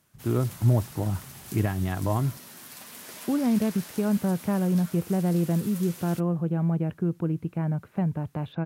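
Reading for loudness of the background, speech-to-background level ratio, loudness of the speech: -42.5 LUFS, 15.5 dB, -27.0 LUFS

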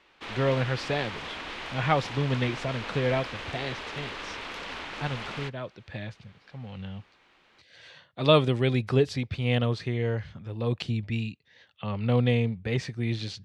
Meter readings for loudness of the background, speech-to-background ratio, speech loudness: -37.0 LUFS, 8.5 dB, -28.5 LUFS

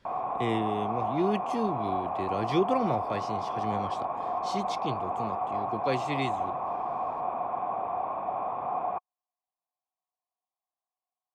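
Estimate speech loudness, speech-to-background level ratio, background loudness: -33.0 LUFS, -1.0 dB, -32.0 LUFS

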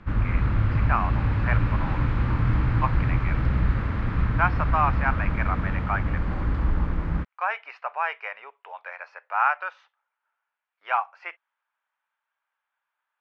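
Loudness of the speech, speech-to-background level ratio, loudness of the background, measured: -29.0 LUFS, -3.5 dB, -25.5 LUFS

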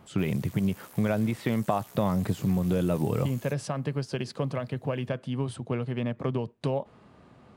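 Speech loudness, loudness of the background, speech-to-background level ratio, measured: -29.5 LUFS, -49.5 LUFS, 20.0 dB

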